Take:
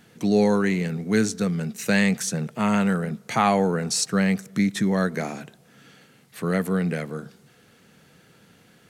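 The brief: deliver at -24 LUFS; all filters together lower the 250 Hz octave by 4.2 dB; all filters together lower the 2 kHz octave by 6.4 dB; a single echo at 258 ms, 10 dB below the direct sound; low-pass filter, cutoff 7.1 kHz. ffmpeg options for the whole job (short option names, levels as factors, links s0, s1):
-af "lowpass=7100,equalizer=f=250:t=o:g=-6,equalizer=f=2000:t=o:g=-8,aecho=1:1:258:0.316,volume=1.33"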